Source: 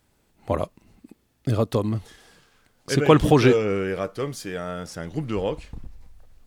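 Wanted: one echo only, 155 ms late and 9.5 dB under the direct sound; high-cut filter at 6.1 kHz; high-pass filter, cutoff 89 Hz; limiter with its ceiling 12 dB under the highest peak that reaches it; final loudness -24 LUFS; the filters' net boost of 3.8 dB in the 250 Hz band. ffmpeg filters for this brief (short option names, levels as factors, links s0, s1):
-af "highpass=89,lowpass=6100,equalizer=f=250:t=o:g=5,alimiter=limit=0.237:level=0:latency=1,aecho=1:1:155:0.335,volume=1.19"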